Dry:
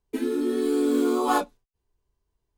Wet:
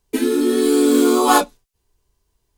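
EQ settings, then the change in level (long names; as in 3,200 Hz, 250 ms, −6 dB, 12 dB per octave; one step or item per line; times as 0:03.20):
parametric band 10,000 Hz +8 dB 3 octaves
+8.0 dB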